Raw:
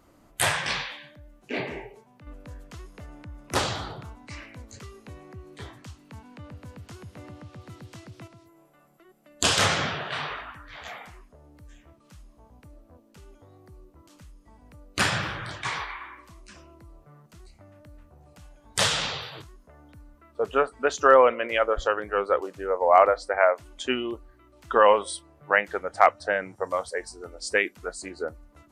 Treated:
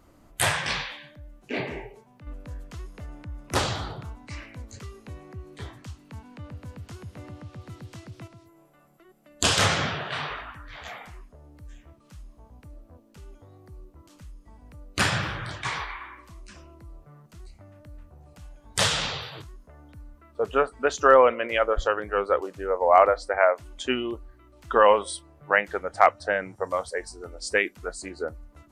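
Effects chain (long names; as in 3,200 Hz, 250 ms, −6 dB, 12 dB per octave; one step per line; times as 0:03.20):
low-shelf EQ 110 Hz +6.5 dB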